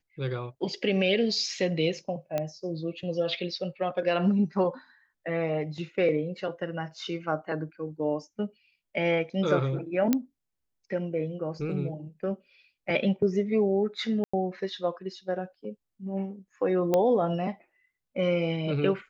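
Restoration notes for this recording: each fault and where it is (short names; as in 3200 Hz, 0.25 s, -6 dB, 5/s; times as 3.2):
2.38 pop -16 dBFS
10.13 pop -10 dBFS
14.24–14.34 gap 95 ms
16.94 pop -12 dBFS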